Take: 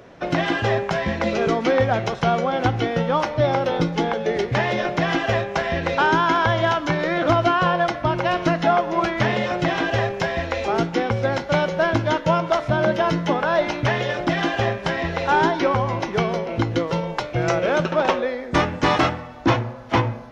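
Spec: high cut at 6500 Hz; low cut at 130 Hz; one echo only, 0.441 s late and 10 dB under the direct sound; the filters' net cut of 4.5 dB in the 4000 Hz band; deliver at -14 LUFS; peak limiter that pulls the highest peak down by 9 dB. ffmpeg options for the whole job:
-af "highpass=130,lowpass=6.5k,equalizer=f=4k:t=o:g=-6,alimiter=limit=-14.5dB:level=0:latency=1,aecho=1:1:441:0.316,volume=10.5dB"

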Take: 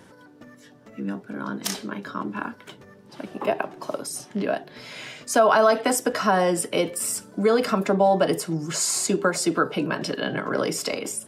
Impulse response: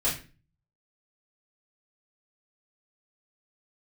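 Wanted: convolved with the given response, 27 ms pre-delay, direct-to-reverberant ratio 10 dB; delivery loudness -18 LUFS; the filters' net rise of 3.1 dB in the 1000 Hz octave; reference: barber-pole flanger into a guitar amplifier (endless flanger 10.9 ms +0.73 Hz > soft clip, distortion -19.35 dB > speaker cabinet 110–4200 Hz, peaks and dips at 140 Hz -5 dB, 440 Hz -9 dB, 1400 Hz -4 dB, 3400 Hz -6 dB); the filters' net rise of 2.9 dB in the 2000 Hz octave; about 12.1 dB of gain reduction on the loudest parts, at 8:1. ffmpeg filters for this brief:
-filter_complex "[0:a]equalizer=f=1k:t=o:g=4.5,equalizer=f=2k:t=o:g=5,acompressor=threshold=-23dB:ratio=8,asplit=2[a][b];[1:a]atrim=start_sample=2205,adelay=27[c];[b][c]afir=irnorm=-1:irlink=0,volume=-19.5dB[d];[a][d]amix=inputs=2:normalize=0,asplit=2[e][f];[f]adelay=10.9,afreqshift=0.73[g];[e][g]amix=inputs=2:normalize=1,asoftclip=threshold=-21.5dB,highpass=110,equalizer=f=140:t=q:w=4:g=-5,equalizer=f=440:t=q:w=4:g=-9,equalizer=f=1.4k:t=q:w=4:g=-4,equalizer=f=3.4k:t=q:w=4:g=-6,lowpass=f=4.2k:w=0.5412,lowpass=f=4.2k:w=1.3066,volume=17dB"

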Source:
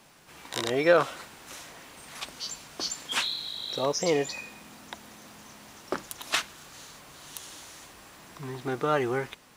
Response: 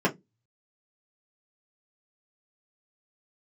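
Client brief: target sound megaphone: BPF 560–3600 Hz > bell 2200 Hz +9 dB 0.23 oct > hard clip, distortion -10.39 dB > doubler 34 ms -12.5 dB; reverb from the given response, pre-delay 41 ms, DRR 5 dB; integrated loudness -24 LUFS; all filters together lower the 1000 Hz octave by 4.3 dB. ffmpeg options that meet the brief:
-filter_complex "[0:a]equalizer=f=1k:t=o:g=-5.5,asplit=2[a][b];[1:a]atrim=start_sample=2205,adelay=41[c];[b][c]afir=irnorm=-1:irlink=0,volume=-18.5dB[d];[a][d]amix=inputs=2:normalize=0,highpass=560,lowpass=3.6k,equalizer=f=2.2k:t=o:w=0.23:g=9,asoftclip=type=hard:threshold=-24dB,asplit=2[e][f];[f]adelay=34,volume=-12.5dB[g];[e][g]amix=inputs=2:normalize=0,volume=9dB"

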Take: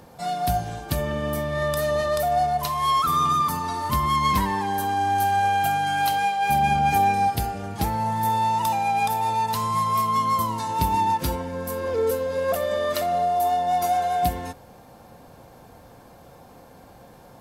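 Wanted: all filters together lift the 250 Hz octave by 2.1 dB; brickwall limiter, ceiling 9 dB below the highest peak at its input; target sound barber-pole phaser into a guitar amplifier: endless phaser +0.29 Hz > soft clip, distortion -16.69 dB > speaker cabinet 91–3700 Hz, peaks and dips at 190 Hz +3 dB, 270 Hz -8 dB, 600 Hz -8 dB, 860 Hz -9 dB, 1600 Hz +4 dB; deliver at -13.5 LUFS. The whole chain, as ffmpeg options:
-filter_complex "[0:a]equalizer=f=250:t=o:g=4.5,alimiter=limit=-17.5dB:level=0:latency=1,asplit=2[a][b];[b]afreqshift=0.29[c];[a][c]amix=inputs=2:normalize=1,asoftclip=threshold=-24dB,highpass=91,equalizer=f=190:t=q:w=4:g=3,equalizer=f=270:t=q:w=4:g=-8,equalizer=f=600:t=q:w=4:g=-8,equalizer=f=860:t=q:w=4:g=-9,equalizer=f=1.6k:t=q:w=4:g=4,lowpass=f=3.7k:w=0.5412,lowpass=f=3.7k:w=1.3066,volume=21.5dB"

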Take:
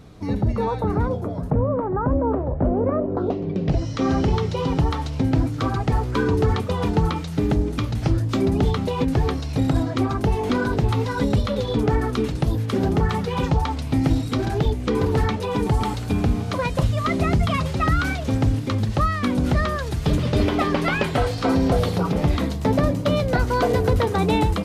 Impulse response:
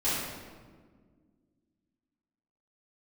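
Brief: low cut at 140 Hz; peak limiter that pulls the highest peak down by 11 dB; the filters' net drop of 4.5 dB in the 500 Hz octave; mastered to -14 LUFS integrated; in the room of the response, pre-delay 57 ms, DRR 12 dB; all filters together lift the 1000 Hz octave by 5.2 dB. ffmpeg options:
-filter_complex "[0:a]highpass=140,equalizer=f=500:t=o:g=-7.5,equalizer=f=1k:t=o:g=8.5,alimiter=limit=-16.5dB:level=0:latency=1,asplit=2[a][b];[1:a]atrim=start_sample=2205,adelay=57[c];[b][c]afir=irnorm=-1:irlink=0,volume=-22dB[d];[a][d]amix=inputs=2:normalize=0,volume=11.5dB"

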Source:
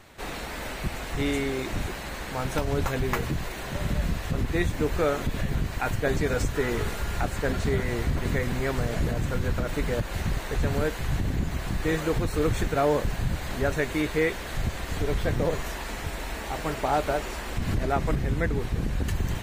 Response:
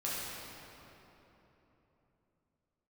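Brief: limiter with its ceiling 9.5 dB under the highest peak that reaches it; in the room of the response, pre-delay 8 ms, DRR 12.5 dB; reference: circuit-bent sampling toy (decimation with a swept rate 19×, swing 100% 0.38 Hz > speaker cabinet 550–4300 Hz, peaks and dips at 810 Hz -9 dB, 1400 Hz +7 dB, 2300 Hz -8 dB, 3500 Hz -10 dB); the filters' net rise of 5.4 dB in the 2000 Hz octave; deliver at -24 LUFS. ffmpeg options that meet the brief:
-filter_complex "[0:a]equalizer=f=2k:t=o:g=7,alimiter=limit=-18.5dB:level=0:latency=1,asplit=2[a][b];[1:a]atrim=start_sample=2205,adelay=8[c];[b][c]afir=irnorm=-1:irlink=0,volume=-17.5dB[d];[a][d]amix=inputs=2:normalize=0,acrusher=samples=19:mix=1:aa=0.000001:lfo=1:lforange=19:lforate=0.38,highpass=550,equalizer=f=810:t=q:w=4:g=-9,equalizer=f=1.4k:t=q:w=4:g=7,equalizer=f=2.3k:t=q:w=4:g=-8,equalizer=f=3.5k:t=q:w=4:g=-10,lowpass=f=4.3k:w=0.5412,lowpass=f=4.3k:w=1.3066,volume=11dB"

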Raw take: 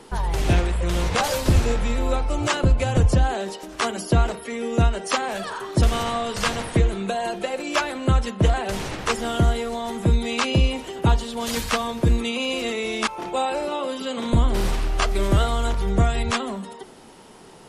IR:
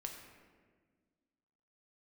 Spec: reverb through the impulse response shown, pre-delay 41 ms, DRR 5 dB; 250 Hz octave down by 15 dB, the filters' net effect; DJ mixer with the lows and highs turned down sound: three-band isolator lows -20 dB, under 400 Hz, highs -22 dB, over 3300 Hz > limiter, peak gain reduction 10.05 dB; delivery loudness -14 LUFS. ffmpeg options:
-filter_complex "[0:a]equalizer=f=250:t=o:g=-4,asplit=2[a][b];[1:a]atrim=start_sample=2205,adelay=41[c];[b][c]afir=irnorm=-1:irlink=0,volume=-2.5dB[d];[a][d]amix=inputs=2:normalize=0,acrossover=split=400 3300:gain=0.1 1 0.0794[e][f][g];[e][f][g]amix=inputs=3:normalize=0,volume=16.5dB,alimiter=limit=-4dB:level=0:latency=1"

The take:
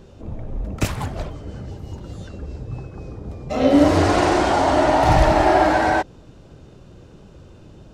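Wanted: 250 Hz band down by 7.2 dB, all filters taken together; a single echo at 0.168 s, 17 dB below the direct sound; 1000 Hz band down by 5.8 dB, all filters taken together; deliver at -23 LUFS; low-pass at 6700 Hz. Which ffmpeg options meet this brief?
-af "lowpass=6.7k,equalizer=f=250:t=o:g=-9,equalizer=f=1k:t=o:g=-7.5,aecho=1:1:168:0.141,volume=-0.5dB"

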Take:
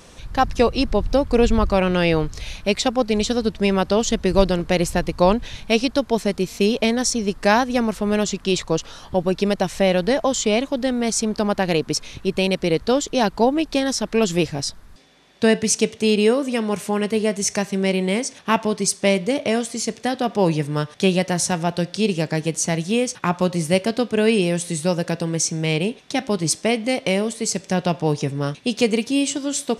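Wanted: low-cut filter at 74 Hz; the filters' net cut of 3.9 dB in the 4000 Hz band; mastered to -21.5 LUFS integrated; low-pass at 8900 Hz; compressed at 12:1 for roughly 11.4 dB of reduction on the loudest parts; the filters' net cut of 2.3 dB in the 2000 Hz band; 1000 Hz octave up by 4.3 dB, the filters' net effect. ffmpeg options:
-af "highpass=74,lowpass=8.9k,equalizer=f=1k:t=o:g=6.5,equalizer=f=2k:t=o:g=-3.5,equalizer=f=4k:t=o:g=-4.5,acompressor=threshold=-20dB:ratio=12,volume=5dB"

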